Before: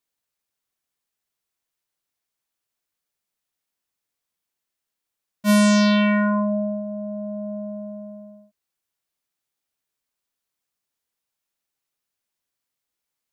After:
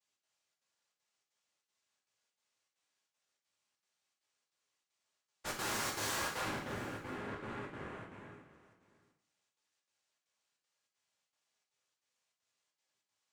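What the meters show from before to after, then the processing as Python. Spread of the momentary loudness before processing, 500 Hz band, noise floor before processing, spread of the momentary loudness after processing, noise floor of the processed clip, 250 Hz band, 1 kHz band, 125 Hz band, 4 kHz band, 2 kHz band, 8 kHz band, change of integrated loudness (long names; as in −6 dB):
18 LU, −19.0 dB, −84 dBFS, 16 LU, below −85 dBFS, −27.5 dB, −12.0 dB, can't be measured, −12.5 dB, −13.0 dB, −8.0 dB, −19.0 dB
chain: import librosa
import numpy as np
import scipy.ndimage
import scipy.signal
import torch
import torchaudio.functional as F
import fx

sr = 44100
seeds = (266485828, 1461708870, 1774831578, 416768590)

y = scipy.signal.sosfilt(scipy.signal.butter(4, 330.0, 'highpass', fs=sr, output='sos'), x)
y = fx.high_shelf(y, sr, hz=5800.0, db=-6.0)
y = fx.notch(y, sr, hz=640.0, q=12.0)
y = y + 0.73 * np.pad(y, (int(5.7 * sr / 1000.0), 0))[:len(y)]
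y = fx.noise_vocoder(y, sr, seeds[0], bands=3)
y = fx.tube_stage(y, sr, drive_db=41.0, bias=0.65)
y = fx.step_gate(y, sr, bpm=196, pattern='xx.xxxx.xxxx.x', floor_db=-60.0, edge_ms=4.5)
y = y + 10.0 ** (-18.5 / 20.0) * np.pad(y, (int(697 * sr / 1000.0), 0))[:len(y)]
y = fx.rev_double_slope(y, sr, seeds[1], early_s=0.59, late_s=1.5, knee_db=-18, drr_db=-1.5)
y = y * librosa.db_to_amplitude(1.0)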